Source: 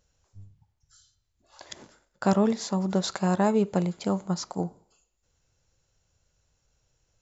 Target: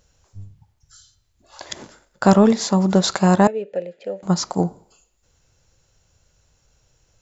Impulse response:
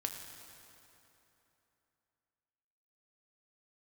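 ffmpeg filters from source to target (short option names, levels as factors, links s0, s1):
-filter_complex "[0:a]asettb=1/sr,asplit=3[s0][s1][s2];[s0]atrim=end=3.474[s3];[s1]atrim=start=3.47:end=4.23,asetpts=PTS-STARTPTS,afade=t=in:d=0.004:c=qsin,afade=t=out:st=0.756:d=0.004:c=qsin,asplit=3[s4][s5][s6];[s4]bandpass=f=530:t=q:w=8,volume=1[s7];[s5]bandpass=f=1840:t=q:w=8,volume=0.501[s8];[s6]bandpass=f=2480:t=q:w=8,volume=0.355[s9];[s7][s8][s9]amix=inputs=3:normalize=0[s10];[s2]atrim=start=4.226[s11];[s3][s10]acrossfade=d=0.004:c1=hsin:c2=qsin[s12];[s12][s11]acrossfade=d=0.004:c1=qsin:c2=hsin,acontrast=60,volume=1.5"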